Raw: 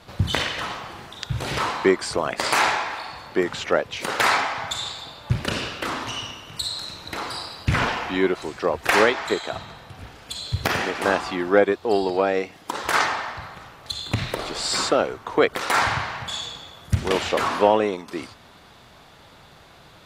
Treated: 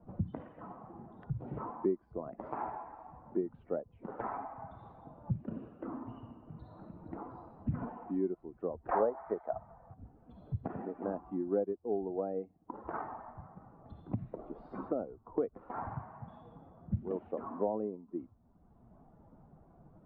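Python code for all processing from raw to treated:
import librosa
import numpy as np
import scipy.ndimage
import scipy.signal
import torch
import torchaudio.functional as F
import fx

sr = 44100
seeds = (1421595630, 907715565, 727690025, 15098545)

y = fx.chain(x, sr, fx.env_lowpass_down(base_hz=1100.0, full_db=-12.0),
    fx.band_shelf(hz=1100.0, db=10.5, octaves=2.5), at=(8.91, 9.94))
y = fx.bin_expand(y, sr, power=1.5)
y = scipy.signal.sosfilt(scipy.signal.bessel(4, 590.0, 'lowpass', norm='mag', fs=sr, output='sos'), y)
y = fx.band_squash(y, sr, depth_pct=70)
y = y * 10.0 ** (-6.0 / 20.0)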